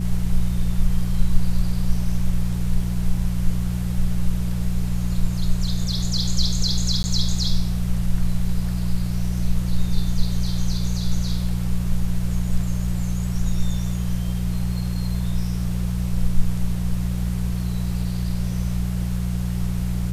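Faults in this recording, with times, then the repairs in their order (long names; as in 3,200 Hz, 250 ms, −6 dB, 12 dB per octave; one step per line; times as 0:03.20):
mains hum 60 Hz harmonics 3 −24 dBFS
0:07.03–0:07.04: drop-out 10 ms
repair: hum removal 60 Hz, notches 3
repair the gap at 0:07.03, 10 ms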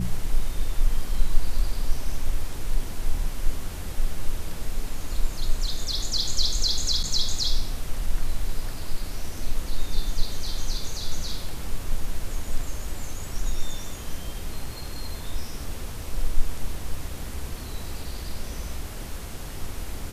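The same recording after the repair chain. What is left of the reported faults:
none of them is left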